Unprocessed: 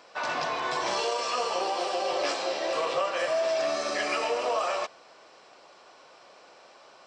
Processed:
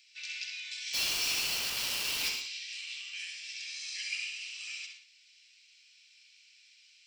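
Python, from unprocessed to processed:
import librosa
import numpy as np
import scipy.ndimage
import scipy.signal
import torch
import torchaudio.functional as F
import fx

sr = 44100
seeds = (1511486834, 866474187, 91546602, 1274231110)

p1 = scipy.signal.sosfilt(scipy.signal.ellip(4, 1.0, 60, 2300.0, 'highpass', fs=sr, output='sos'), x)
p2 = fx.rider(p1, sr, range_db=10, speed_s=2.0)
p3 = fx.quant_companded(p2, sr, bits=2, at=(0.93, 2.28), fade=0.02)
p4 = p3 + fx.echo_filtered(p3, sr, ms=64, feedback_pct=20, hz=4400.0, wet_db=-4, dry=0)
p5 = fx.rev_gated(p4, sr, seeds[0], gate_ms=140, shape='rising', drr_db=8.0)
y = F.gain(torch.from_numpy(p5), -4.0).numpy()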